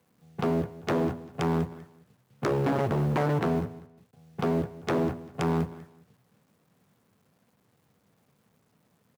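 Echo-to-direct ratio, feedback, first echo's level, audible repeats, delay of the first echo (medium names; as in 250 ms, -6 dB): -18.0 dB, 23%, -18.0 dB, 2, 196 ms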